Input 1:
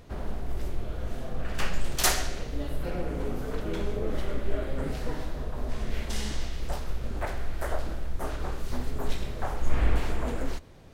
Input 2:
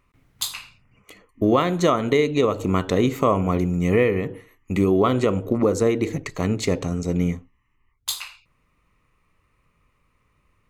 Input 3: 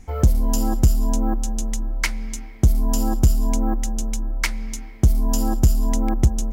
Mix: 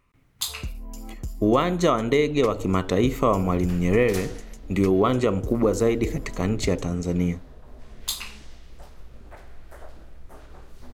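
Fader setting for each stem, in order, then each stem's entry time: -12.5, -1.5, -18.0 dB; 2.10, 0.00, 0.40 s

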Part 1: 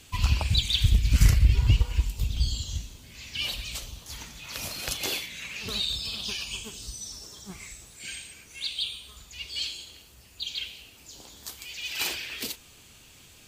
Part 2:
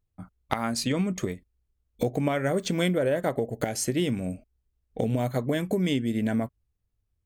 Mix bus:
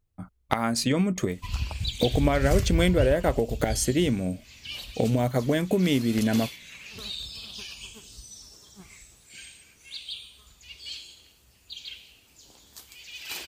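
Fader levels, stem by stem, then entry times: -6.5, +2.5 dB; 1.30, 0.00 s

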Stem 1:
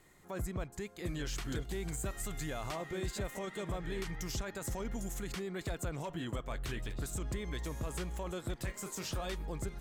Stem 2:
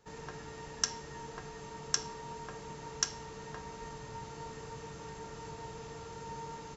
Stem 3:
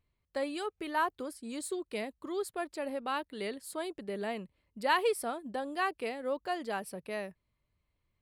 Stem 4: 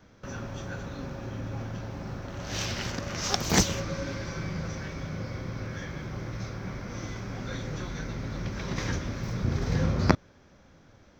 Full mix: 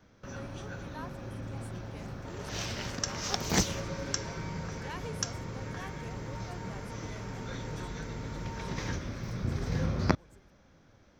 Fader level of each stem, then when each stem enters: -19.5, -2.5, -15.0, -4.5 dB; 0.70, 2.20, 0.00, 0.00 s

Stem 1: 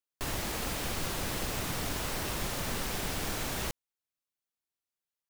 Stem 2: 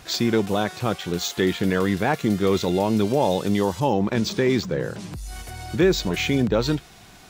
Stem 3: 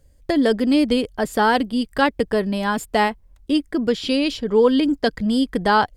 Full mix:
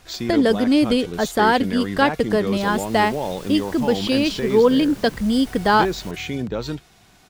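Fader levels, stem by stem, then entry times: -8.0, -5.5, +0.5 dB; 2.40, 0.00, 0.00 s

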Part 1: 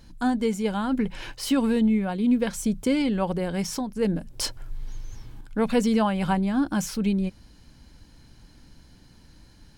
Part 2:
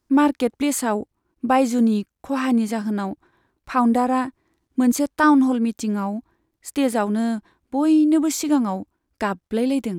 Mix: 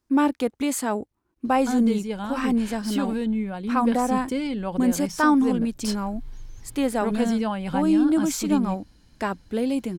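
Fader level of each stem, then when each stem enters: -4.0, -3.5 dB; 1.45, 0.00 s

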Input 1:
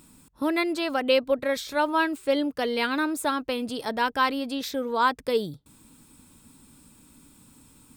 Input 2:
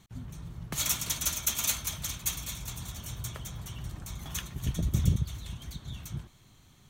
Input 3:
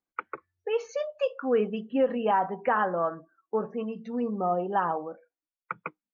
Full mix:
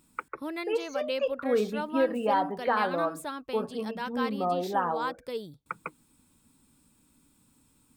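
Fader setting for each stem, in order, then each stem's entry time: -10.5 dB, off, -1.5 dB; 0.00 s, off, 0.00 s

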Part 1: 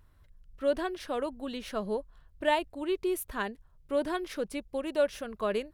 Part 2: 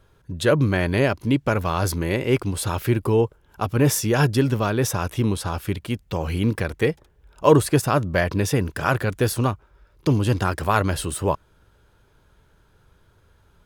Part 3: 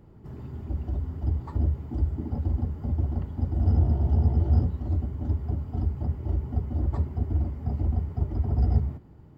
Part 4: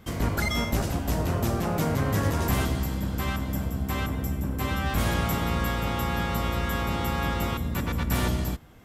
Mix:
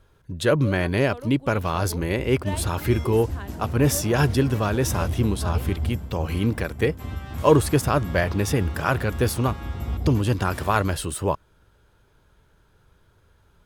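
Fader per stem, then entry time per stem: -7.5, -1.5, -5.5, -12.0 dB; 0.00, 0.00, 1.30, 2.40 s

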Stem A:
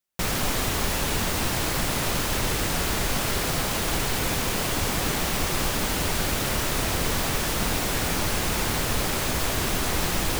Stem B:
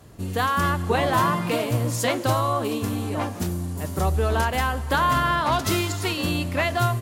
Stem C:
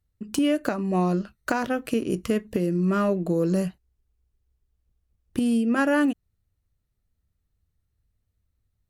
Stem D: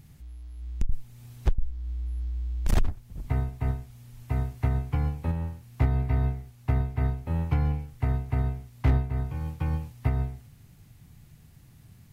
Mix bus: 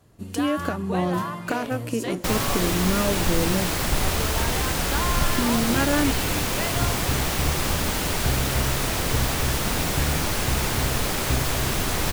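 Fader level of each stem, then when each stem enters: +0.5, -9.0, -2.0, -2.5 dB; 2.05, 0.00, 0.00, 2.45 s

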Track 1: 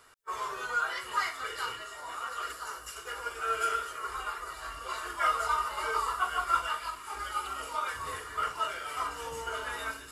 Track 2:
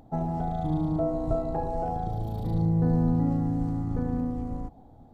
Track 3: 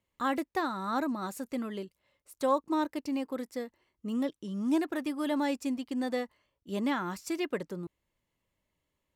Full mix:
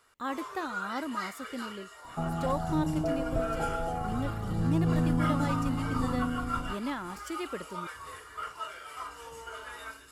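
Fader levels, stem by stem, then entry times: -6.5, -3.5, -4.5 dB; 0.00, 2.05, 0.00 s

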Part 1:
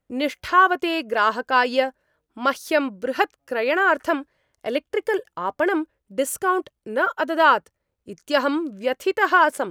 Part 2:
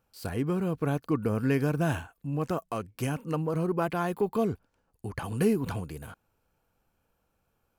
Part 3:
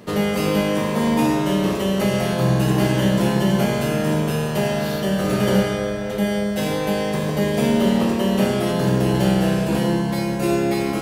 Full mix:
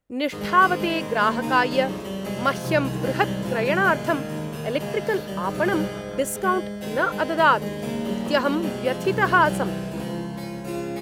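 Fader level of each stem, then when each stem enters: -1.5, -16.0, -10.0 dB; 0.00, 2.15, 0.25 s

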